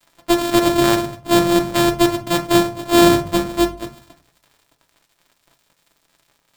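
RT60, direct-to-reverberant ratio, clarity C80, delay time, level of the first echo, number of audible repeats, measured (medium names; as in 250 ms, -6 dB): 0.45 s, 3.0 dB, 20.5 dB, no echo, no echo, no echo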